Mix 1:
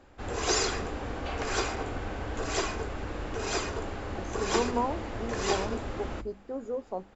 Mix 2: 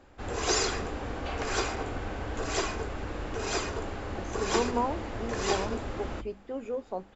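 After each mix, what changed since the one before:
speech: remove Butterworth band-stop 2600 Hz, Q 0.89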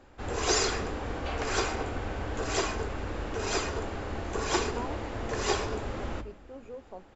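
speech -9.5 dB; reverb: on, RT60 1.0 s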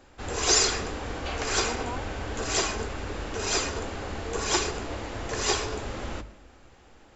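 speech: entry -2.90 s; master: add high shelf 2900 Hz +9 dB

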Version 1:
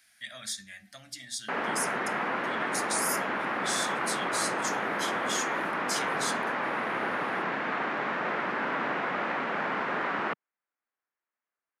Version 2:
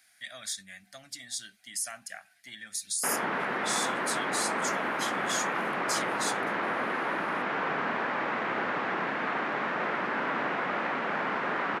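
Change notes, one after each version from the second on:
background: entry +1.55 s; reverb: off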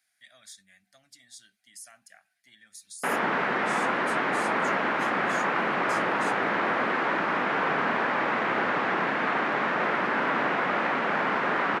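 speech -12.0 dB; background +4.5 dB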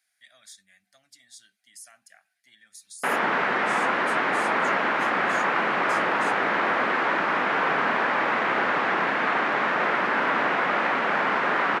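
background +3.5 dB; master: add low shelf 360 Hz -6 dB

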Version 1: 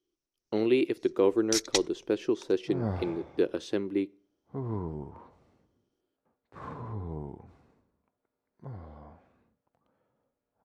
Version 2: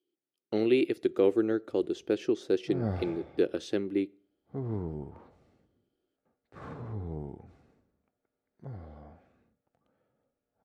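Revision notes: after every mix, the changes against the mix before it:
first sound: muted; master: add bell 1000 Hz -13 dB 0.21 oct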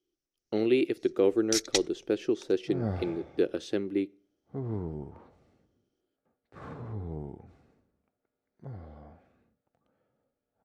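first sound: unmuted

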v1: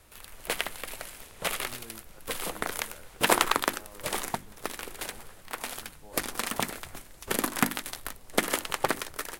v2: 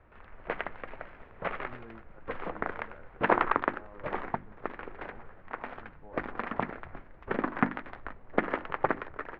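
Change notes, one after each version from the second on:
master: add LPF 1900 Hz 24 dB/oct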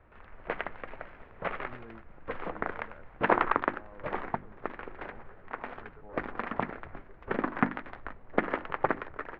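second sound: entry +2.15 s

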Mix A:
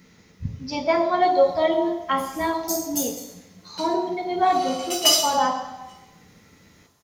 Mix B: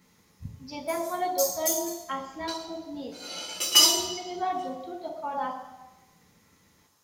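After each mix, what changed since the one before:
speech -10.0 dB; background: entry -1.30 s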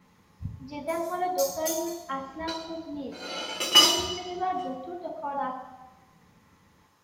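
background +6.5 dB; master: add tone controls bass +4 dB, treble -13 dB

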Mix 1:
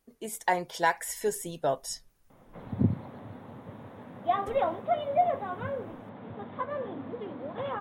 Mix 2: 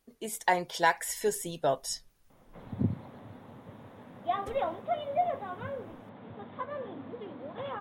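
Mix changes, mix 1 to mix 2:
background -4.0 dB; master: add bell 3700 Hz +3.5 dB 1.4 oct

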